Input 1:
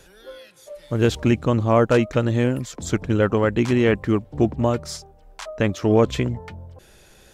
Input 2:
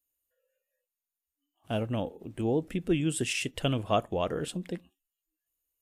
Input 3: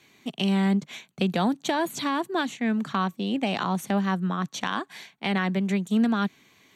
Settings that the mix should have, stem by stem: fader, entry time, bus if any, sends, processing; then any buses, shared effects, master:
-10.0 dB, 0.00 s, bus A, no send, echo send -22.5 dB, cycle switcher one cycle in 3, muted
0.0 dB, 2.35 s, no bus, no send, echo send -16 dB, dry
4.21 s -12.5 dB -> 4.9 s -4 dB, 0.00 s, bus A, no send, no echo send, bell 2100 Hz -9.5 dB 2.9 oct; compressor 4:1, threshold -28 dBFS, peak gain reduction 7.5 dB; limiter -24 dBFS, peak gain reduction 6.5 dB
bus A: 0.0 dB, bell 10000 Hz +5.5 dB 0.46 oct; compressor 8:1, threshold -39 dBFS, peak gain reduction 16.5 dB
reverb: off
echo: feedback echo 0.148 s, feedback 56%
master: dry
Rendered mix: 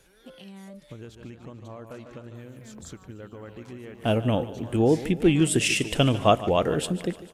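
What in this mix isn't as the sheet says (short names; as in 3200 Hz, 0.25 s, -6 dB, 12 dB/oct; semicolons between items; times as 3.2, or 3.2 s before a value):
stem 1: missing cycle switcher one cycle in 3, muted; stem 2 0.0 dB -> +7.5 dB; stem 3: missing bell 2100 Hz -9.5 dB 2.9 oct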